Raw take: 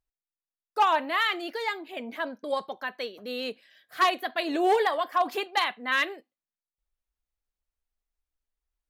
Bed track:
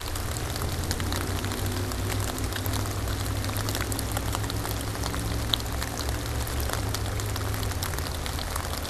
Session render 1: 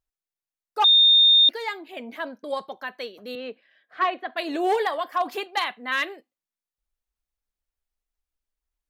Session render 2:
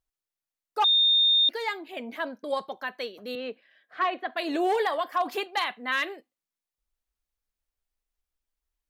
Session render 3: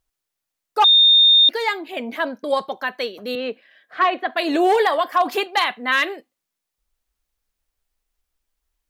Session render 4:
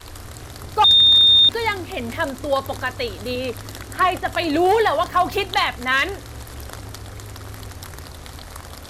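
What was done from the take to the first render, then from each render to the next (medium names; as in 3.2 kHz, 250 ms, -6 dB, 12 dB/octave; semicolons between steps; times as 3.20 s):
0.84–1.49 s: bleep 3.65 kHz -12 dBFS; 3.35–4.37 s: band-pass 210–2300 Hz
peak limiter -17.5 dBFS, peak gain reduction 5.5 dB
trim +8.5 dB
add bed track -6 dB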